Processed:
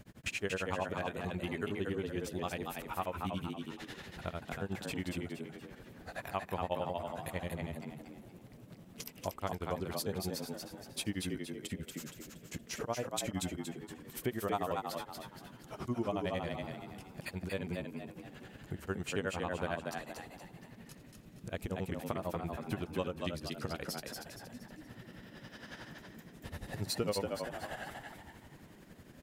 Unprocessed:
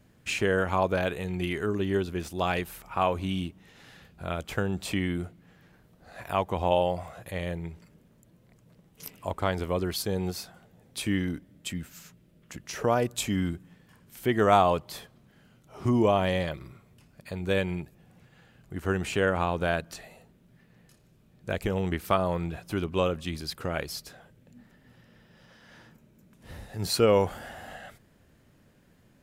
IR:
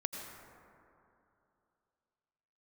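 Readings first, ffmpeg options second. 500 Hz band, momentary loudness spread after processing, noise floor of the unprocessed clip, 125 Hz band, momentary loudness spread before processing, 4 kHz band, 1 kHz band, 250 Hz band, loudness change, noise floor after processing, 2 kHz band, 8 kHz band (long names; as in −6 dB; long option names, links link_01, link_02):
−10.5 dB, 15 LU, −61 dBFS, −9.0 dB, 18 LU, −7.5 dB, −10.5 dB, −8.5 dB, −11.0 dB, −56 dBFS, −8.5 dB, −5.0 dB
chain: -filter_complex "[0:a]acompressor=threshold=-47dB:ratio=2.5,tremolo=f=11:d=1,asplit=6[link_01][link_02][link_03][link_04][link_05][link_06];[link_02]adelay=235,afreqshift=66,volume=-4dB[link_07];[link_03]adelay=470,afreqshift=132,volume=-12dB[link_08];[link_04]adelay=705,afreqshift=198,volume=-19.9dB[link_09];[link_05]adelay=940,afreqshift=264,volume=-27.9dB[link_10];[link_06]adelay=1175,afreqshift=330,volume=-35.8dB[link_11];[link_01][link_07][link_08][link_09][link_10][link_11]amix=inputs=6:normalize=0,volume=8dB"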